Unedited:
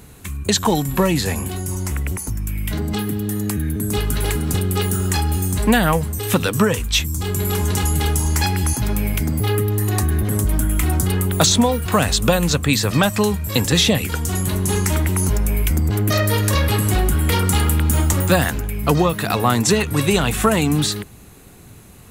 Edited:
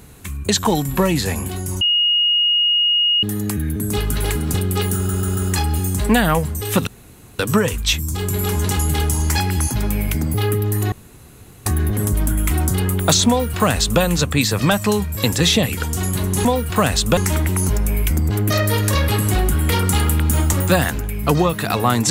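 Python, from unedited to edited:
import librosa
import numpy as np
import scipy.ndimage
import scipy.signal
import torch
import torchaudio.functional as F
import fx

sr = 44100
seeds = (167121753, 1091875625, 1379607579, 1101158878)

y = fx.edit(x, sr, fx.bleep(start_s=1.81, length_s=1.42, hz=2870.0, db=-13.0),
    fx.stutter(start_s=4.95, slice_s=0.14, count=4),
    fx.insert_room_tone(at_s=6.45, length_s=0.52),
    fx.insert_room_tone(at_s=9.98, length_s=0.74),
    fx.duplicate(start_s=11.61, length_s=0.72, to_s=14.77), tone=tone)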